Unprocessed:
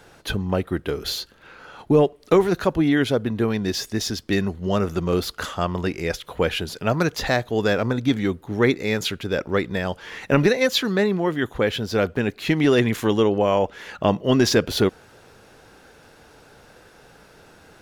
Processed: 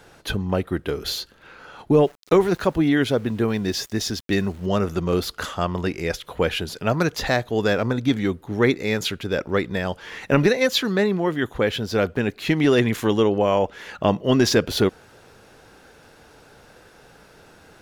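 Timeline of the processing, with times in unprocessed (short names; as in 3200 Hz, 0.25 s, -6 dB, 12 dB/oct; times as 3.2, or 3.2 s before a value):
2.01–4.66 sample gate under -43 dBFS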